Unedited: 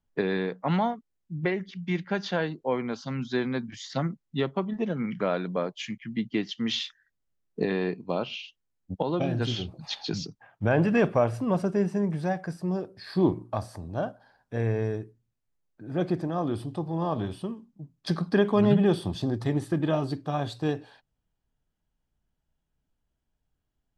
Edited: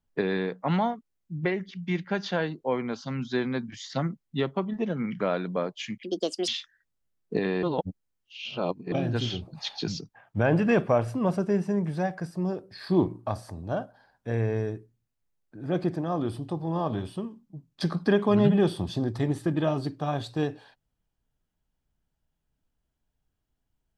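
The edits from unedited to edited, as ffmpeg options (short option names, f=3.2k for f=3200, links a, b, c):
-filter_complex "[0:a]asplit=5[a][b][c][d][e];[a]atrim=end=6.034[f];[b]atrim=start=6.03:end=6.74,asetpts=PTS-STARTPTS,asetrate=69678,aresample=44100,atrim=end_sample=19817,asetpts=PTS-STARTPTS[g];[c]atrim=start=6.736:end=7.892[h];[d]atrim=start=7.888:end=9.182,asetpts=PTS-STARTPTS,areverse[i];[e]atrim=start=9.178[j];[f][g]acrossfade=d=0.004:c1=hsin:c2=hsin[k];[k][h]acrossfade=d=0.004:c1=hsin:c2=hsin[l];[l][i]acrossfade=d=0.004:c1=hsin:c2=hsin[m];[m][j]acrossfade=d=0.004:c1=hsin:c2=hsin"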